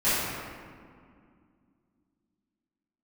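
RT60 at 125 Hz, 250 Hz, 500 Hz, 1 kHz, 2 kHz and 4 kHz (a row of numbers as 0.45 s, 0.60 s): 2.9 s, 3.4 s, 2.2 s, 2.1 s, 1.7 s, 1.1 s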